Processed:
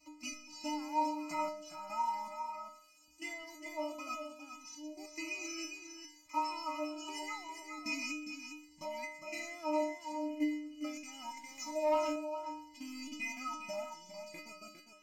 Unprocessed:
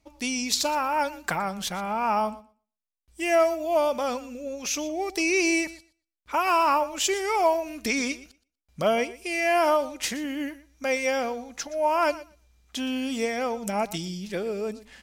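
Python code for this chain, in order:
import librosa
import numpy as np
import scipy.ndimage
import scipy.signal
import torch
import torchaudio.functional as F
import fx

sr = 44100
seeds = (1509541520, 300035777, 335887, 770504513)

p1 = fx.delta_mod(x, sr, bps=64000, step_db=-40.0)
p2 = fx.highpass(p1, sr, hz=150.0, slope=6)
p3 = fx.level_steps(p2, sr, step_db=15)
p4 = fx.transient(p3, sr, attack_db=2, sustain_db=-3)
p5 = fx.fixed_phaser(p4, sr, hz=2400.0, stages=8)
p6 = fx.stiff_resonator(p5, sr, f0_hz=300.0, decay_s=0.68, stiffness=0.008)
p7 = p6 + fx.echo_single(p6, sr, ms=406, db=-7.5, dry=0)
p8 = fx.leveller(p7, sr, passes=1, at=(11.37, 12.16))
p9 = fx.notch_cascade(p8, sr, direction='rising', hz=0.76)
y = p9 * 10.0 ** (16.0 / 20.0)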